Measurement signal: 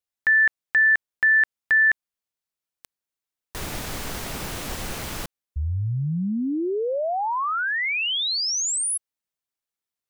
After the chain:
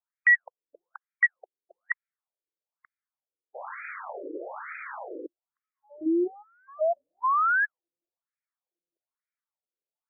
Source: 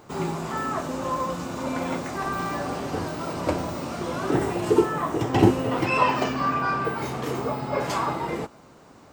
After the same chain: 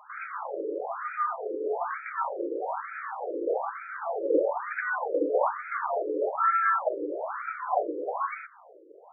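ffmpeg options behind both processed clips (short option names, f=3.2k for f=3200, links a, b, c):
-af "afreqshift=170,aeval=exprs='0.631*(cos(1*acos(clip(val(0)/0.631,-1,1)))-cos(1*PI/2))+0.0355*(cos(2*acos(clip(val(0)/0.631,-1,1)))-cos(2*PI/2))+0.0631*(cos(3*acos(clip(val(0)/0.631,-1,1)))-cos(3*PI/2))+0.141*(cos(4*acos(clip(val(0)/0.631,-1,1)))-cos(4*PI/2))+0.158*(cos(5*acos(clip(val(0)/0.631,-1,1)))-cos(5*PI/2))':c=same,afftfilt=real='re*between(b*sr/1024,390*pow(1800/390,0.5+0.5*sin(2*PI*1.1*pts/sr))/1.41,390*pow(1800/390,0.5+0.5*sin(2*PI*1.1*pts/sr))*1.41)':imag='im*between(b*sr/1024,390*pow(1800/390,0.5+0.5*sin(2*PI*1.1*pts/sr))/1.41,390*pow(1800/390,0.5+0.5*sin(2*PI*1.1*pts/sr))*1.41)':win_size=1024:overlap=0.75,volume=-3.5dB"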